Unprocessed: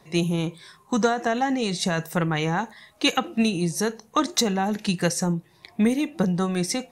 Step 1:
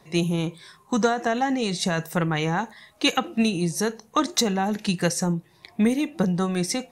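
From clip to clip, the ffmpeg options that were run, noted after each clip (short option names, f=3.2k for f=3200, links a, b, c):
-af anull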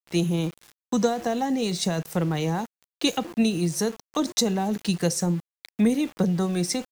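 -filter_complex "[0:a]acrossover=split=180|840|3100[a][b][c][d];[c]acompressor=threshold=-41dB:ratio=6[e];[a][b][e][d]amix=inputs=4:normalize=0,aeval=exprs='val(0)*gte(abs(val(0)),0.0119)':c=same"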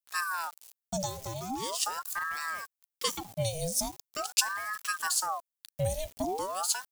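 -af "crystalizer=i=2.5:c=0,equalizer=f=1.1k:w=0.65:g=-14,aeval=exprs='val(0)*sin(2*PI*900*n/s+900*0.65/0.42*sin(2*PI*0.42*n/s))':c=same,volume=-5dB"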